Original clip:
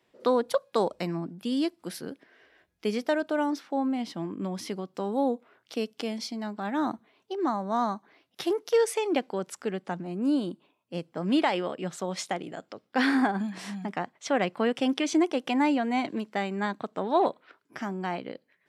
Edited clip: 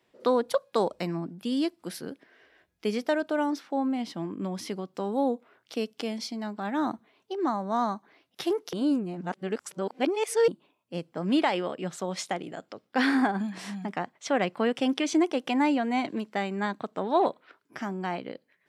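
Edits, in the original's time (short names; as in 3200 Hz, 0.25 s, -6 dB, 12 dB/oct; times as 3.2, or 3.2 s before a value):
8.73–10.48 reverse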